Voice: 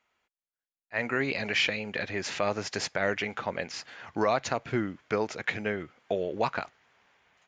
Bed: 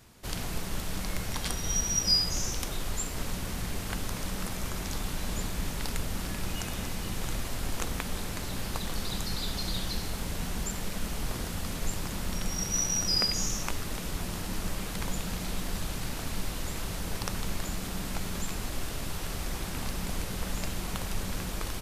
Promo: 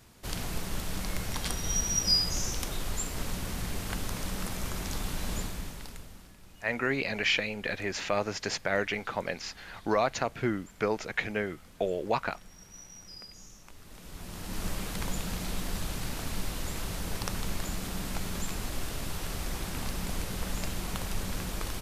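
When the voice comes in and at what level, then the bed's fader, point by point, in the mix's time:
5.70 s, -0.5 dB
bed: 5.37 s -0.5 dB
6.37 s -20.5 dB
13.64 s -20.5 dB
14.64 s -0.5 dB

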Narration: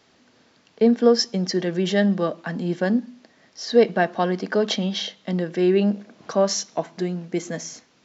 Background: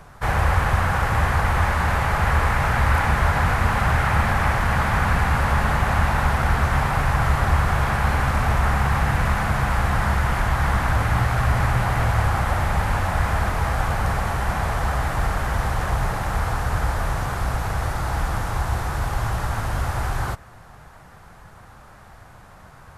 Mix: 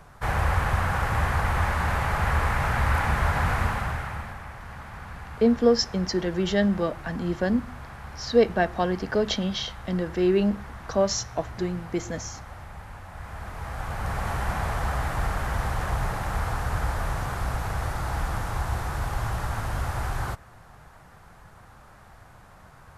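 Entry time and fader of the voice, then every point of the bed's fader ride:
4.60 s, -3.0 dB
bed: 3.61 s -4.5 dB
4.45 s -20 dB
13.06 s -20 dB
14.31 s -4.5 dB

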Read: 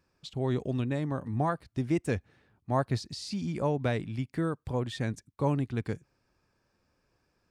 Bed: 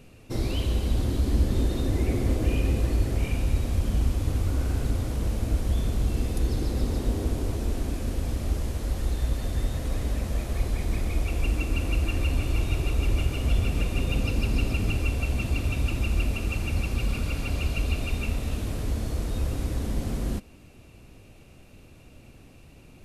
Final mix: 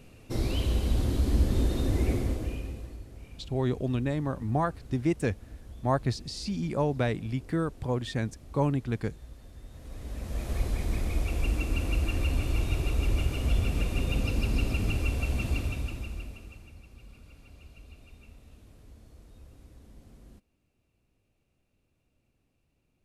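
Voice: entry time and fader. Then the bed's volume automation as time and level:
3.15 s, +1.5 dB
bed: 2.11 s -1.5 dB
3.04 s -20.5 dB
9.62 s -20.5 dB
10.5 s -2.5 dB
15.55 s -2.5 dB
16.8 s -24 dB

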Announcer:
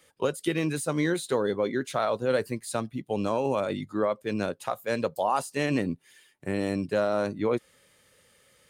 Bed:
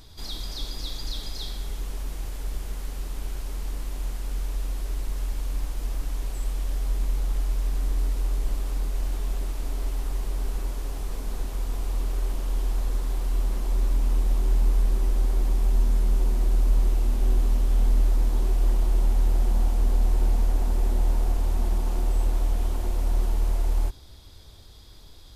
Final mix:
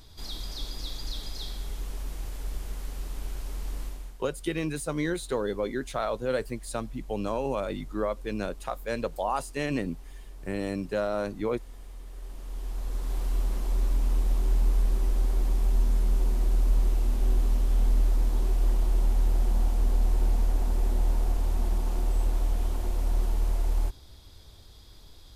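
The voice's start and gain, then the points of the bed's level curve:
4.00 s, -3.0 dB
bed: 3.85 s -3 dB
4.19 s -16.5 dB
12.05 s -16.5 dB
13.18 s -2.5 dB

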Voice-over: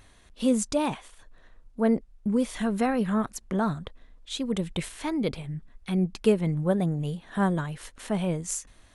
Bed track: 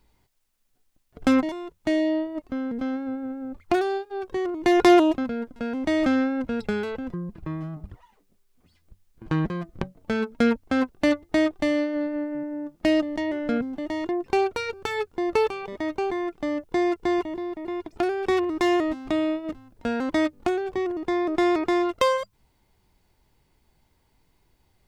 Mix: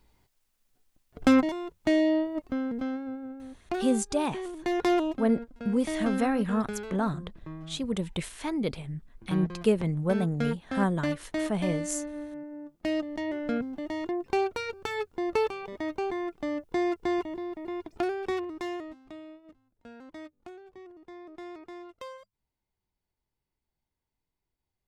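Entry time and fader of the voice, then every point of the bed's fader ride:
3.40 s, -2.0 dB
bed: 2.5 s -0.5 dB
3.49 s -9.5 dB
12.8 s -9.5 dB
13.32 s -4.5 dB
18.09 s -4.5 dB
19.23 s -21.5 dB

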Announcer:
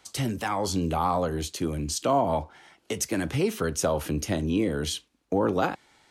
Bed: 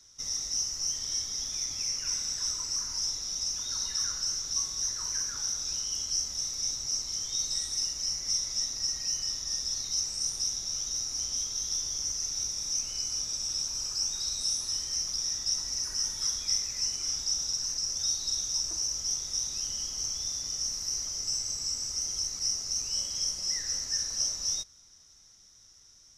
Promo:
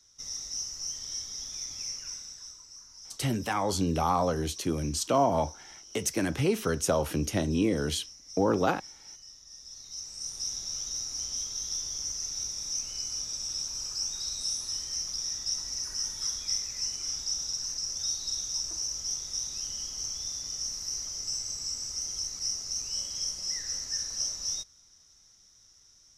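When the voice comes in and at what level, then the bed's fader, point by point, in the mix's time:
3.05 s, -1.0 dB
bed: 1.9 s -4.5 dB
2.65 s -17 dB
9.49 s -17 dB
10.55 s -2 dB

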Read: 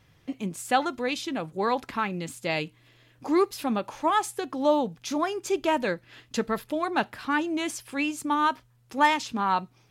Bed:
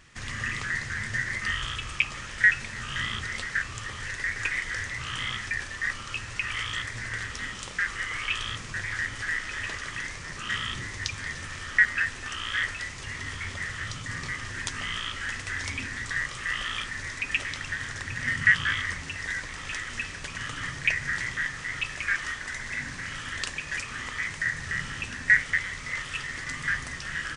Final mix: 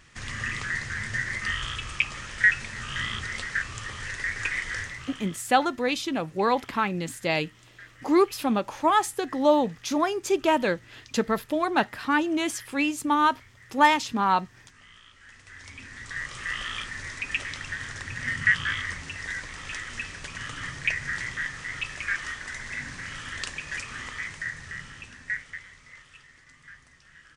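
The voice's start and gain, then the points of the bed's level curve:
4.80 s, +2.5 dB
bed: 4.79 s 0 dB
5.5 s -20 dB
15.15 s -20 dB
16.38 s -1.5 dB
24.01 s -1.5 dB
26.47 s -20.5 dB

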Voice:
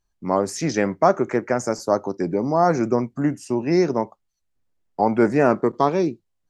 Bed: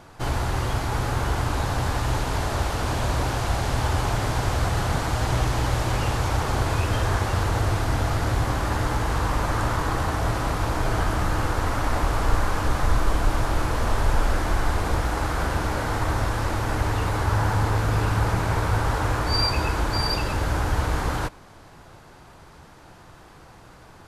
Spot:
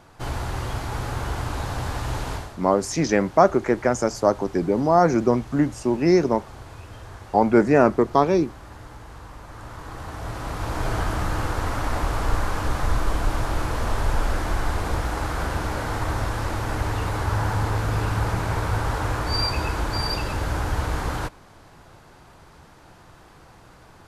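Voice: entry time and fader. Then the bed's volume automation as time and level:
2.35 s, +1.0 dB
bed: 2.33 s -3.5 dB
2.57 s -17.5 dB
9.45 s -17.5 dB
10.84 s -1.5 dB

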